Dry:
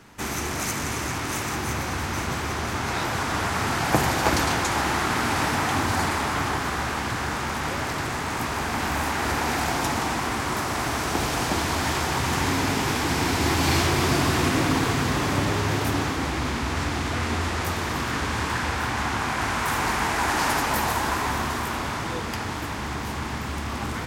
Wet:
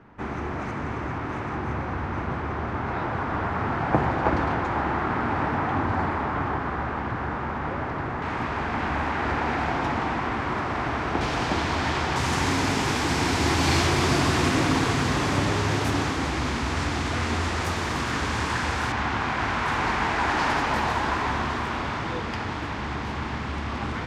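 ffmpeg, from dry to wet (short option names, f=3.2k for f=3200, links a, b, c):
-af "asetnsamples=n=441:p=0,asendcmd='8.22 lowpass f 2400;11.21 lowpass f 4100;12.16 lowpass f 8200;18.92 lowpass f 3900',lowpass=1.5k"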